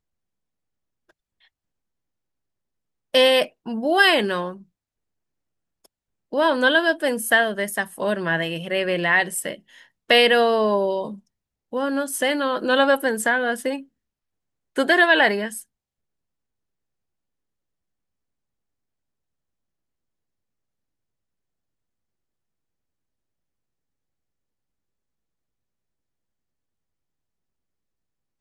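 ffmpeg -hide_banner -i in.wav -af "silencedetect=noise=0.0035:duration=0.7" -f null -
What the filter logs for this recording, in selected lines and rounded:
silence_start: 0.00
silence_end: 1.09 | silence_duration: 1.09
silence_start: 1.47
silence_end: 3.14 | silence_duration: 1.67
silence_start: 4.63
silence_end: 5.85 | silence_duration: 1.21
silence_start: 13.85
silence_end: 14.76 | silence_duration: 0.90
silence_start: 15.63
silence_end: 28.41 | silence_duration: 12.77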